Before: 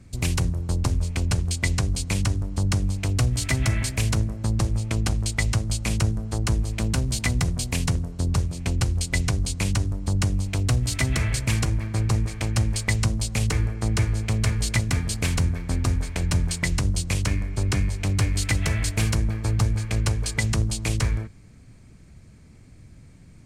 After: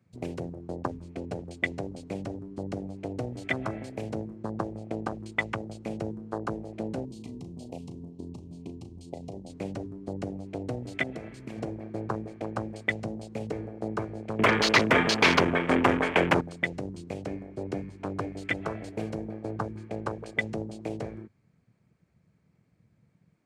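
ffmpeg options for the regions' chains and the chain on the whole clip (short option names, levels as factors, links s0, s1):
-filter_complex "[0:a]asettb=1/sr,asplit=3[s0][s1][s2];[s0]atrim=end=7.054[s3];[s1]atrim=start=7.05:end=9.5,asetpts=PTS-STARTPTS,afade=t=in:d=0.004:c=qsin,afade=t=out:st=2.446:d=0.004:c=qsin,acompressor=threshold=0.0631:ratio=5:attack=3.2:release=140:knee=1:detection=peak,asuperstop=centerf=1600:order=4:qfactor=0.82,asplit=2[s4][s5];[s5]adelay=36,volume=0.335[s6];[s4][s6]amix=inputs=2:normalize=0,atrim=end_sample=108045[s7];[s2]atrim=start=9.496[s8];[s3][s7]acrossfade=d=0.004:c1=hsin:c2=qsin[s9];[s9][s8]acrossfade=d=0.004:c1=qsin:c2=hsin,asettb=1/sr,asplit=3[s10][s11][s12];[s10]atrim=end=11.034[s13];[s11]atrim=start=11.03:end=11.58,asetpts=PTS-STARTPTS,afade=t=in:d=0.004:c=qsin,afade=t=out:st=0.546:d=0.004:c=qsin,equalizer=f=110:w=5:g=-6.5,acompressor=threshold=0.0631:ratio=3:attack=3.2:release=140:knee=1:detection=peak[s14];[s12]atrim=start=11.576[s15];[s13][s14]acrossfade=d=0.004:c1=hsin:c2=qsin[s16];[s16][s15]acrossfade=d=0.004:c1=qsin:c2=hsin,asettb=1/sr,asplit=3[s17][s18][s19];[s17]atrim=end=14.394[s20];[s18]atrim=start=14.39:end=16.41,asetpts=PTS-STARTPTS,afade=t=in:d=0.004:c=qsin,afade=t=out:st=2.016:d=0.004:c=qsin,equalizer=f=79:t=o:w=2.4:g=-9,aeval=exprs='0.299*sin(PI/2*3.98*val(0)/0.299)':c=same[s21];[s19]atrim=start=16.406[s22];[s20][s21]acrossfade=d=0.004:c1=hsin:c2=qsin[s23];[s23][s22]acrossfade=d=0.004:c1=qsin:c2=hsin,lowpass=f=1600:p=1,afwtdn=0.0251,highpass=360,volume=1.58"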